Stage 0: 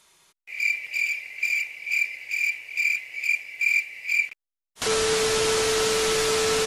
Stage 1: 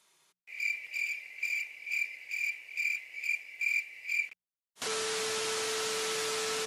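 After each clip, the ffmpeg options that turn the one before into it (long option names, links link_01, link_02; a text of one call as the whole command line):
ffmpeg -i in.wav -filter_complex "[0:a]highpass=130,bandreject=frequency=60:width_type=h:width=6,bandreject=frequency=120:width_type=h:width=6,bandreject=frequency=180:width_type=h:width=6,acrossover=split=770[link_01][link_02];[link_01]alimiter=level_in=2dB:limit=-24dB:level=0:latency=1,volume=-2dB[link_03];[link_03][link_02]amix=inputs=2:normalize=0,volume=-8.5dB" out.wav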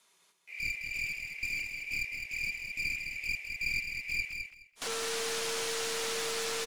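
ffmpeg -i in.wav -filter_complex "[0:a]afreqshift=16,aeval=exprs='clip(val(0),-1,0.0168)':channel_layout=same,asplit=2[link_01][link_02];[link_02]aecho=0:1:210|420|630:0.501|0.0802|0.0128[link_03];[link_01][link_03]amix=inputs=2:normalize=0" out.wav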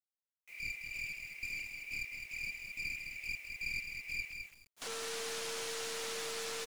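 ffmpeg -i in.wav -af "acrusher=bits=8:mix=0:aa=0.000001,volume=-6dB" out.wav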